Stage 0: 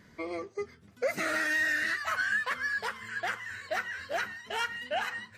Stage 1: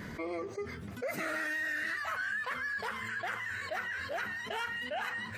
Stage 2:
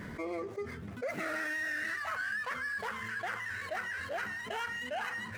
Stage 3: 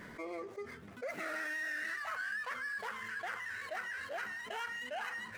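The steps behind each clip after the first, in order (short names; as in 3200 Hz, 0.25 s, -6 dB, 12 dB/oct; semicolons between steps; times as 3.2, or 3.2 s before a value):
bell 5600 Hz -5.5 dB 1.6 oct; fast leveller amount 70%; gain -8 dB
median filter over 9 samples
bell 81 Hz -10.5 dB 3 oct; gain -3 dB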